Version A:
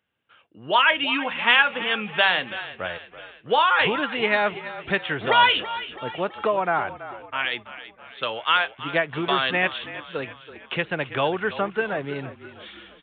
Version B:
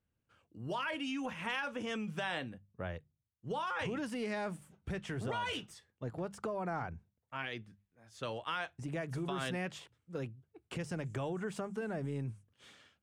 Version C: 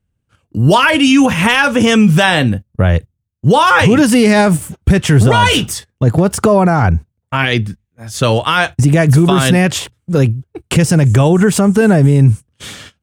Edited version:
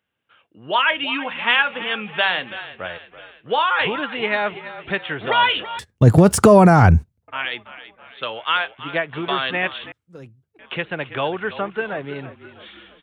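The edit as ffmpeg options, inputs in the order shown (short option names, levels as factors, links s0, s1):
-filter_complex "[0:a]asplit=3[s0][s1][s2];[s0]atrim=end=5.792[s3];[2:a]atrim=start=5.788:end=7.282[s4];[s1]atrim=start=7.278:end=9.922[s5];[1:a]atrim=start=9.918:end=10.592[s6];[s2]atrim=start=10.588[s7];[s3][s4]acrossfade=d=0.004:c1=hsin:c2=hsin[s8];[s8][s5]acrossfade=d=0.004:c1=hsin:c2=hsin[s9];[s9][s6]acrossfade=d=0.004:c1=hsin:c2=hsin[s10];[s10][s7]acrossfade=d=0.004:c1=hsin:c2=hsin"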